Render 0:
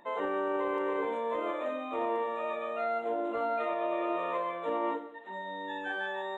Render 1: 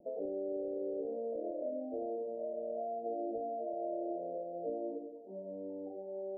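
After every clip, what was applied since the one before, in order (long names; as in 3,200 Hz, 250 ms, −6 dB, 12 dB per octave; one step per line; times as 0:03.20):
downward compressor, threshold −35 dBFS, peak gain reduction 7.5 dB
Butterworth low-pass 710 Hz 96 dB per octave
level +1.5 dB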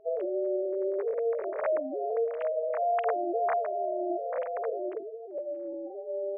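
three sine waves on the formant tracks
level +8.5 dB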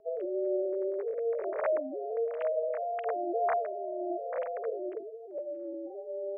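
rotating-speaker cabinet horn 1.1 Hz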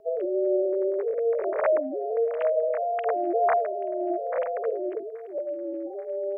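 delay with a high-pass on its return 833 ms, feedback 67%, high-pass 1,700 Hz, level −20 dB
level +6.5 dB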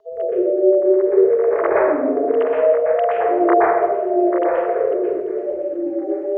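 convolution reverb RT60 1.2 s, pre-delay 117 ms, DRR −6 dB
level −3.5 dB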